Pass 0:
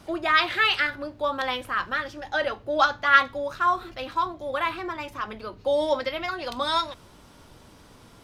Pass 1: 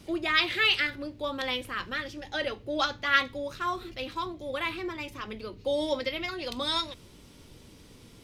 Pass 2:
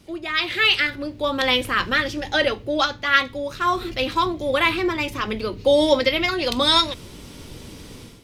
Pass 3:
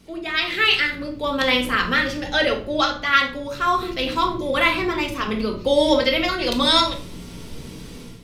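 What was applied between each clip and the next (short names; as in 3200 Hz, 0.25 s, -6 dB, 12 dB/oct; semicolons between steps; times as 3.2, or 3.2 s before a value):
band shelf 1000 Hz -9 dB
AGC gain up to 14 dB; gain -1 dB
shoebox room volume 480 m³, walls furnished, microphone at 1.6 m; gain -1 dB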